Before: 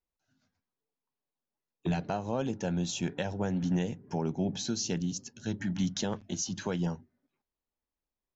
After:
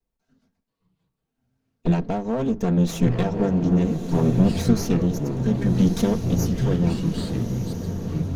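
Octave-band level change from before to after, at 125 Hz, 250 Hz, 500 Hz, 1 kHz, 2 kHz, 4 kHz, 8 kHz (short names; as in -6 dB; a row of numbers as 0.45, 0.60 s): +13.5 dB, +12.5 dB, +10.5 dB, +7.0 dB, +4.0 dB, +2.0 dB, n/a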